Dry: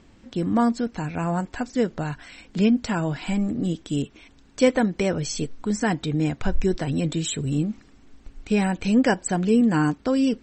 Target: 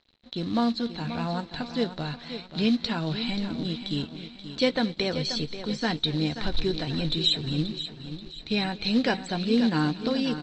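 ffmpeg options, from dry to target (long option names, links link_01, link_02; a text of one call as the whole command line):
ffmpeg -i in.wav -filter_complex "[0:a]asplit=2[link_01][link_02];[link_02]adelay=13,volume=-12.5dB[link_03];[link_01][link_03]amix=inputs=2:normalize=0,asplit=2[link_04][link_05];[link_05]aecho=0:1:532|1064|1596|2128|2660:0.299|0.131|0.0578|0.0254|0.0112[link_06];[link_04][link_06]amix=inputs=2:normalize=0,acrusher=bits=6:mode=log:mix=0:aa=0.000001,asplit=2[link_07][link_08];[link_08]aecho=0:1:227:0.106[link_09];[link_07][link_09]amix=inputs=2:normalize=0,aeval=exprs='sgn(val(0))*max(abs(val(0))-0.00355,0)':channel_layout=same,lowpass=frequency=4000:width_type=q:width=11,volume=-5.5dB" out.wav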